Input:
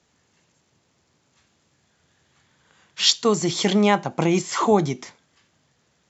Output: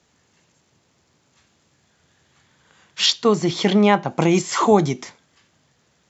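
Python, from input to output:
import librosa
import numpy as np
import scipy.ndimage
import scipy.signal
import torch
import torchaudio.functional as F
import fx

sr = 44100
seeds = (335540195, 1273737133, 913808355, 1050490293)

y = fx.air_absorb(x, sr, metres=120.0, at=(3.06, 4.08))
y = y * librosa.db_to_amplitude(3.0)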